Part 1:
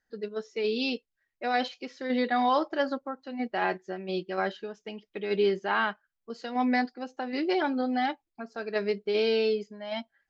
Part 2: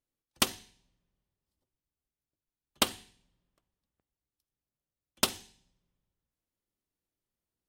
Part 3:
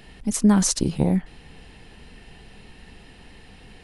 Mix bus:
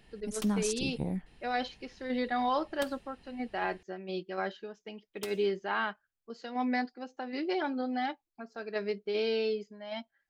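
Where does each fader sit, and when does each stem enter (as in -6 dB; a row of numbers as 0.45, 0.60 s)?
-5.0, -16.5, -13.5 dB; 0.00, 0.00, 0.00 s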